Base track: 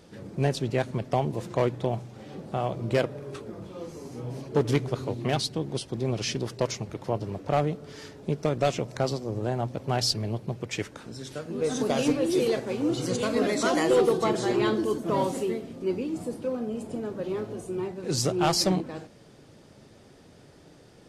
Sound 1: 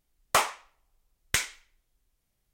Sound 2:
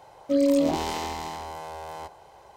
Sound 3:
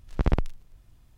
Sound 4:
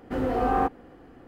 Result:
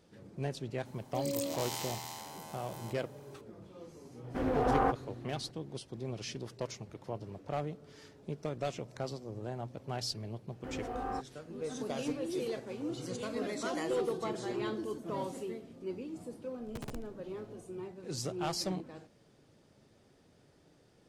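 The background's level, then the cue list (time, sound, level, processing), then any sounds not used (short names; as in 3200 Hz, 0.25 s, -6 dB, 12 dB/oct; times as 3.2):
base track -11.5 dB
0.85 add 2 -11.5 dB + RIAA curve recording
4.24 add 4 -5 dB + Doppler distortion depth 0.37 ms
10.53 add 4 -14 dB
16.56 add 3 -16.5 dB + wrapped overs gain 18.5 dB
not used: 1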